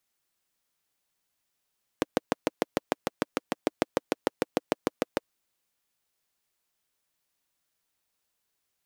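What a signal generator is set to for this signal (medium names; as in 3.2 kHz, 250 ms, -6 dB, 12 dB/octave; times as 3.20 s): single-cylinder engine model, steady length 3.26 s, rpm 800, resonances 310/480 Hz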